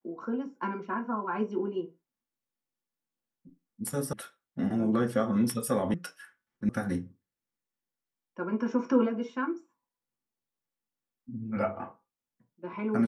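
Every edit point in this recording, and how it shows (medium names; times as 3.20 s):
4.13 s: sound stops dead
5.94 s: sound stops dead
6.69 s: sound stops dead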